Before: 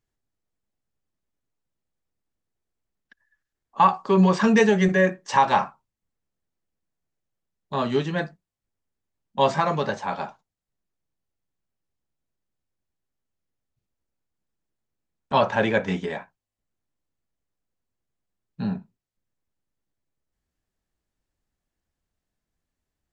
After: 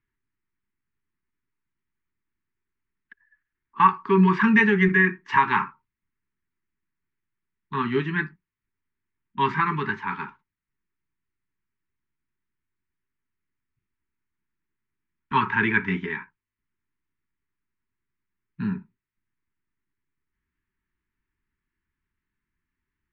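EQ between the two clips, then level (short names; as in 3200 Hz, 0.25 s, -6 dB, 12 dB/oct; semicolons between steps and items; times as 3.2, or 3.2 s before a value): Chebyshev band-stop 410–900 Hz, order 4; synth low-pass 2100 Hz, resonance Q 2.2; 0.0 dB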